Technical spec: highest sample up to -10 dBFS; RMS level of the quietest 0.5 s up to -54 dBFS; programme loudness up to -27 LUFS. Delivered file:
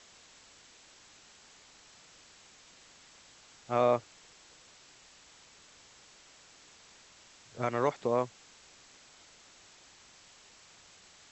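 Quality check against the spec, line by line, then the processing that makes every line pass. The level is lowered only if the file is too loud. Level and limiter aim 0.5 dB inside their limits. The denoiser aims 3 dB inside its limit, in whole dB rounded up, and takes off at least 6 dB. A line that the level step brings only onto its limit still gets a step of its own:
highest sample -15.5 dBFS: OK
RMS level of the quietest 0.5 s -58 dBFS: OK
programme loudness -31.0 LUFS: OK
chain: none

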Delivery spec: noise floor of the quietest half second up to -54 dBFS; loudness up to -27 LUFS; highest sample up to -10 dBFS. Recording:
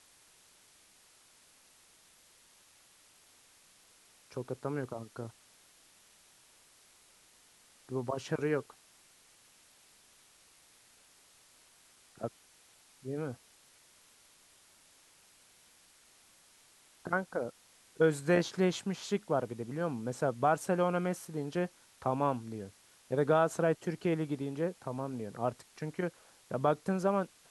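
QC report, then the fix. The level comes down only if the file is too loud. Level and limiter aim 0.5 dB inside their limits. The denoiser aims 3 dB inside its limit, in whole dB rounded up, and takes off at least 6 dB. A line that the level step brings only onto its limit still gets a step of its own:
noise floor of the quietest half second -63 dBFS: OK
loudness -34.0 LUFS: OK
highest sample -15.0 dBFS: OK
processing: none

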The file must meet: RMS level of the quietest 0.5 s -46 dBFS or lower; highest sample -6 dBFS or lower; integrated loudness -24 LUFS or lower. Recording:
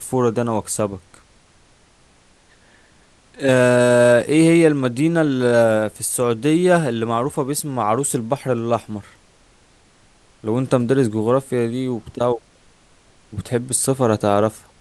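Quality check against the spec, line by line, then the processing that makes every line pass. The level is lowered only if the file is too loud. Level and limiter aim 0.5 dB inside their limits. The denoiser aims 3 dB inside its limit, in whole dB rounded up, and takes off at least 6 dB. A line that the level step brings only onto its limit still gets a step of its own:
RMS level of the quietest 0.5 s -54 dBFS: OK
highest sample -2.0 dBFS: fail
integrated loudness -18.5 LUFS: fail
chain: gain -6 dB

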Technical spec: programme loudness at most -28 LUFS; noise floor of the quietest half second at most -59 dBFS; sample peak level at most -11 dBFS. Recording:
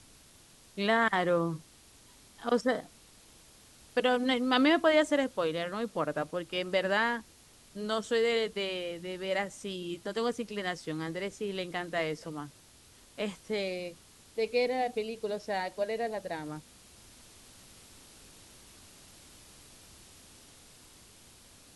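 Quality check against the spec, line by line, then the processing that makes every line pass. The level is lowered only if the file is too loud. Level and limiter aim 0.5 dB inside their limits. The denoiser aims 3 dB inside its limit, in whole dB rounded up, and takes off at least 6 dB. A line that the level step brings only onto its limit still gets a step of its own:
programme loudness -31.5 LUFS: OK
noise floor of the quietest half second -58 dBFS: fail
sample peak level -12.0 dBFS: OK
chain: denoiser 6 dB, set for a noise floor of -58 dBFS

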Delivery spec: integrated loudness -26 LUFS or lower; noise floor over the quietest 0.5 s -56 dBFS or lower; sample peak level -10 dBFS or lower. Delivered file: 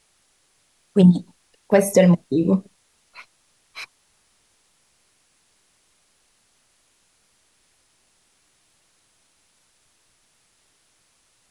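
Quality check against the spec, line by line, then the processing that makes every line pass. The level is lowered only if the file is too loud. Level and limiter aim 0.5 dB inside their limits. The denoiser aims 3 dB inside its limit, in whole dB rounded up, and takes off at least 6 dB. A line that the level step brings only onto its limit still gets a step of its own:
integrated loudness -18.0 LUFS: fail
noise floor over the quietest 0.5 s -64 dBFS: OK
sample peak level -4.0 dBFS: fail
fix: gain -8.5 dB

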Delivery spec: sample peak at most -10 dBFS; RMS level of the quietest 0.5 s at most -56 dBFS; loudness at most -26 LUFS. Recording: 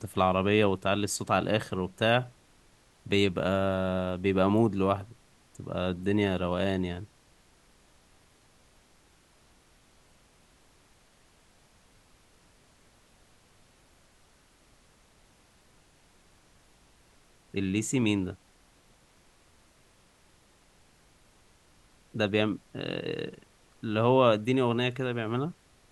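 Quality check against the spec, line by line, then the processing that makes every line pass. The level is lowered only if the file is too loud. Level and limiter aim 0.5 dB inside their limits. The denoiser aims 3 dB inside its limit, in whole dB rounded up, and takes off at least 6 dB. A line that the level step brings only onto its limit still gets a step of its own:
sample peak -8.5 dBFS: fail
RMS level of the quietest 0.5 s -62 dBFS: OK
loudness -28.5 LUFS: OK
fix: limiter -10.5 dBFS

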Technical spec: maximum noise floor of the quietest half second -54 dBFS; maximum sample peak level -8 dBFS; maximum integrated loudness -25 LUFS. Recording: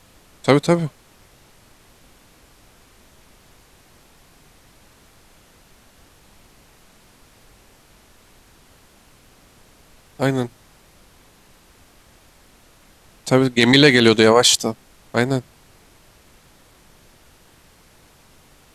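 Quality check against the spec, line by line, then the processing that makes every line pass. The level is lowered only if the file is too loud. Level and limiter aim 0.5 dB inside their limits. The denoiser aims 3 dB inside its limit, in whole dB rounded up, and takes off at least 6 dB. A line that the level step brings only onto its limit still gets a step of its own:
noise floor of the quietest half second -52 dBFS: fail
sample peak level -1.5 dBFS: fail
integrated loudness -16.5 LUFS: fail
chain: gain -9 dB

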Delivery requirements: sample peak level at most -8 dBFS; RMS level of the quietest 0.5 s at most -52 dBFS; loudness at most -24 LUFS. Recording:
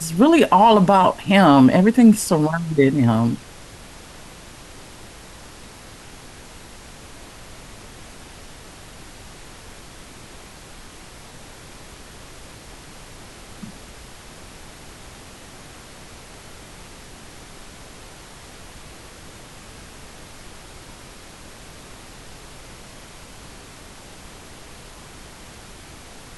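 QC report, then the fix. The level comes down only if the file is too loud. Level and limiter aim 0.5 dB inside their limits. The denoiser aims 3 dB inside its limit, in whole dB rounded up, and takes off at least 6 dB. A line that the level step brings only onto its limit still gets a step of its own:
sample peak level -3.5 dBFS: fail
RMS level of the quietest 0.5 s -41 dBFS: fail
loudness -15.0 LUFS: fail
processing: denoiser 6 dB, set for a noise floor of -41 dBFS; gain -9.5 dB

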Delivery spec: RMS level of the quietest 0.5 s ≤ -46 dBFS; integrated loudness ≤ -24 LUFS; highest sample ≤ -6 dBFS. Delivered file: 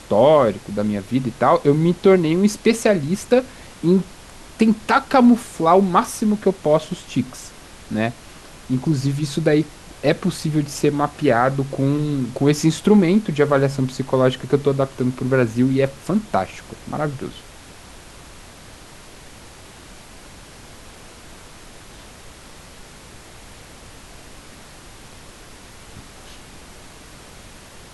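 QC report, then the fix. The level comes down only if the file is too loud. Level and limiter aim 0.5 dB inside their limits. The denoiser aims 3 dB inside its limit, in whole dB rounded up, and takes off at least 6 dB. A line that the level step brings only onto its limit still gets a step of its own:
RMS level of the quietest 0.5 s -42 dBFS: fail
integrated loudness -19.0 LUFS: fail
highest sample -3.0 dBFS: fail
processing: gain -5.5 dB

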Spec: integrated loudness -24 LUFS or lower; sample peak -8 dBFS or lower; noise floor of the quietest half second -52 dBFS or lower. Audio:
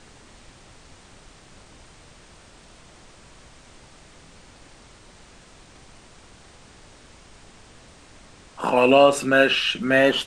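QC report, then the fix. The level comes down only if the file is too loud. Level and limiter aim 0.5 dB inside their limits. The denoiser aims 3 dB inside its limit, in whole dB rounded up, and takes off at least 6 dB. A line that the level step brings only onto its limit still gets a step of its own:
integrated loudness -18.0 LUFS: fail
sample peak -4.5 dBFS: fail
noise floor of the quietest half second -49 dBFS: fail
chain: gain -6.5 dB

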